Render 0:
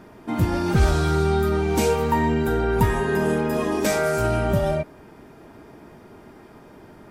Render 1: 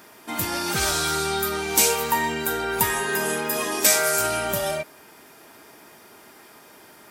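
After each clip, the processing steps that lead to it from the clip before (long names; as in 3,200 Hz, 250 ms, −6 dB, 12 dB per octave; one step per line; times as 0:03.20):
spectral tilt +4.5 dB per octave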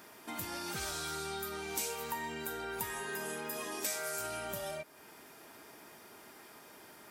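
downward compressor 2 to 1, threshold −38 dBFS, peak gain reduction 13.5 dB
level −6 dB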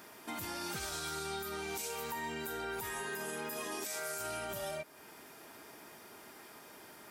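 brickwall limiter −31 dBFS, peak gain reduction 10 dB
level +1 dB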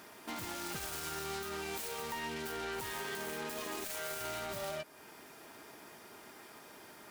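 phase distortion by the signal itself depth 0.16 ms
level +1 dB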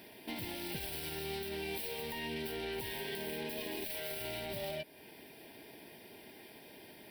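phaser with its sweep stopped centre 3,000 Hz, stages 4
level +3 dB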